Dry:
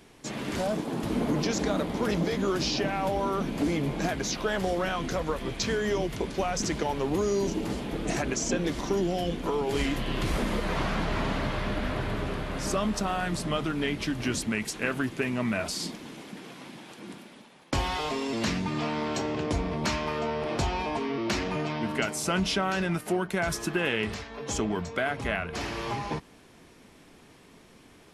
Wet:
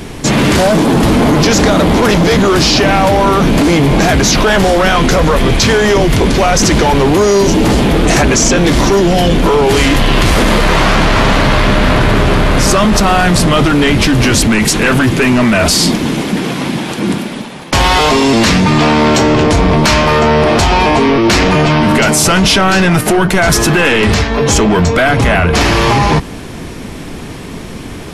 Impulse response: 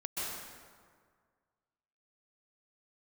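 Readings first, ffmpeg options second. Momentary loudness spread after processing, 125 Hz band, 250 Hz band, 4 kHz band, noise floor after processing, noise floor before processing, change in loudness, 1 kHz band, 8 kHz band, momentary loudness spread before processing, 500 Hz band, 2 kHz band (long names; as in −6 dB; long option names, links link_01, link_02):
7 LU, +21.0 dB, +19.5 dB, +20.5 dB, −26 dBFS, −54 dBFS, +19.5 dB, +20.0 dB, +20.5 dB, 6 LU, +18.5 dB, +20.0 dB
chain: -af "lowshelf=frequency=210:gain=9.5,apsyclip=30.5dB,volume=-5.5dB"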